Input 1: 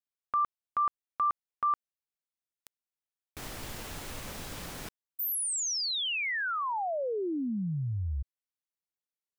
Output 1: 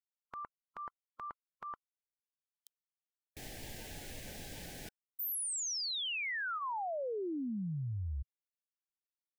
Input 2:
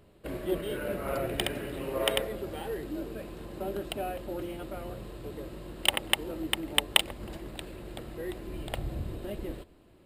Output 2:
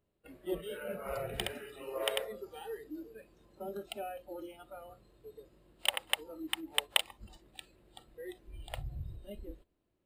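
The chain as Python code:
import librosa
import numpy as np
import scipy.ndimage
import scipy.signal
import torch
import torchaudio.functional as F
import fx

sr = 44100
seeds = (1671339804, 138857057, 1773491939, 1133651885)

y = fx.noise_reduce_blind(x, sr, reduce_db=16)
y = F.gain(torch.from_numpy(y), -5.5).numpy()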